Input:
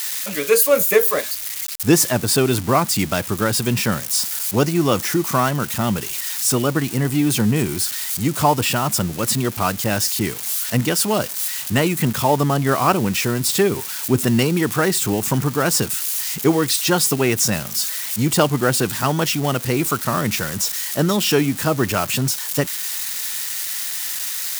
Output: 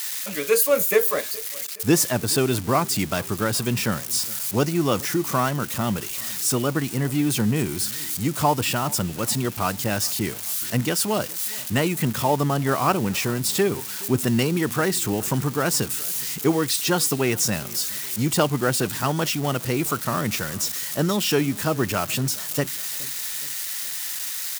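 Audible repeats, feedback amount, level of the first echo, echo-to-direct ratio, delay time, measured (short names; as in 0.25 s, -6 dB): 3, 52%, -22.5 dB, -21.0 dB, 0.419 s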